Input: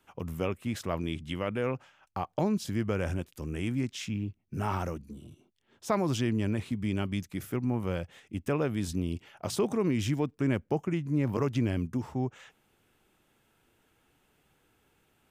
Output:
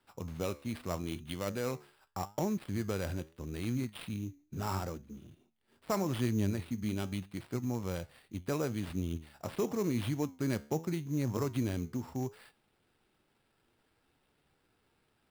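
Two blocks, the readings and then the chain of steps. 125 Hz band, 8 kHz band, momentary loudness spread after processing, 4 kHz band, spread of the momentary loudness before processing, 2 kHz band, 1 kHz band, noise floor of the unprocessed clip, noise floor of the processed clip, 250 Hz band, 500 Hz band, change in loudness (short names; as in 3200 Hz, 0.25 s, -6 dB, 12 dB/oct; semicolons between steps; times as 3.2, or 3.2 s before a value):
-4.0 dB, -1.5 dB, 9 LU, -4.5 dB, 9 LU, -5.5 dB, -4.5 dB, -71 dBFS, -75 dBFS, -4.5 dB, -4.5 dB, -4.5 dB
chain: switching dead time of 0.057 ms; flange 0.8 Hz, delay 7.9 ms, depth 6.3 ms, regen +81%; sample-rate reducer 6400 Hz, jitter 0%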